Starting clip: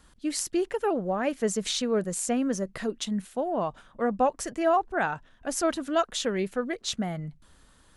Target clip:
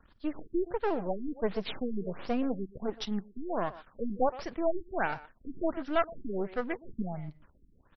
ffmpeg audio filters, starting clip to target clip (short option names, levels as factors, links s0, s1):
-filter_complex "[0:a]aeval=exprs='if(lt(val(0),0),0.251*val(0),val(0))':c=same,asplit=2[s0][s1];[s1]adelay=120,highpass=300,lowpass=3400,asoftclip=type=hard:threshold=0.0891,volume=0.158[s2];[s0][s2]amix=inputs=2:normalize=0,afftfilt=real='re*lt(b*sr/1024,380*pow(6000/380,0.5+0.5*sin(2*PI*1.4*pts/sr)))':imag='im*lt(b*sr/1024,380*pow(6000/380,0.5+0.5*sin(2*PI*1.4*pts/sr)))':win_size=1024:overlap=0.75"